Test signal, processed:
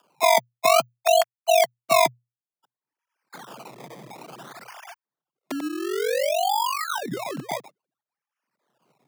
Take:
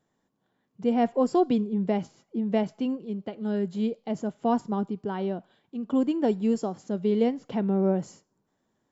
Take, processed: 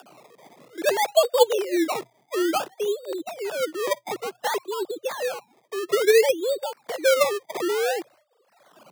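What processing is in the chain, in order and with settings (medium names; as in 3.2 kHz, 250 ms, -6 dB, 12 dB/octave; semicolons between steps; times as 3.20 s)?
formants replaced by sine waves; decimation with a swept rate 22×, swing 100% 0.57 Hz; frequency shift +120 Hz; upward compressor, threshold -29 dBFS; trim +2.5 dB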